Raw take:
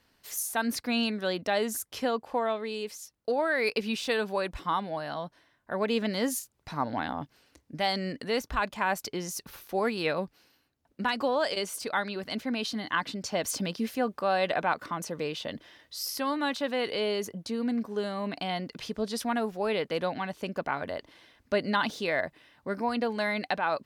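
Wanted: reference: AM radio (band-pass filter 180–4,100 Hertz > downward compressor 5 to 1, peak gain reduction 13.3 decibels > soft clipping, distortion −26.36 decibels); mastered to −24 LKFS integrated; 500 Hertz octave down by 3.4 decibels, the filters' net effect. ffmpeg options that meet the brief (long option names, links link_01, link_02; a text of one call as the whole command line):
ffmpeg -i in.wav -af "highpass=180,lowpass=4100,equalizer=frequency=500:width_type=o:gain=-4,acompressor=threshold=-37dB:ratio=5,asoftclip=threshold=-25.5dB,volume=17.5dB" out.wav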